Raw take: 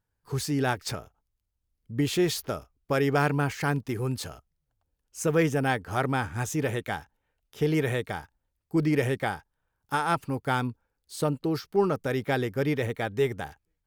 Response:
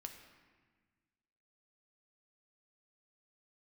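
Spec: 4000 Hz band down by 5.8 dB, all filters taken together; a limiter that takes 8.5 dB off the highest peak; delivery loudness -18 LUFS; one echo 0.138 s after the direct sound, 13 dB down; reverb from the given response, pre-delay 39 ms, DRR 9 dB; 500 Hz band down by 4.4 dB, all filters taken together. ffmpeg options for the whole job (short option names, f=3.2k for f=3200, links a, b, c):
-filter_complex "[0:a]equalizer=f=500:t=o:g=-5.5,equalizer=f=4k:t=o:g=-7.5,alimiter=limit=-21.5dB:level=0:latency=1,aecho=1:1:138:0.224,asplit=2[a][b];[1:a]atrim=start_sample=2205,adelay=39[c];[b][c]afir=irnorm=-1:irlink=0,volume=-4.5dB[d];[a][d]amix=inputs=2:normalize=0,volume=14dB"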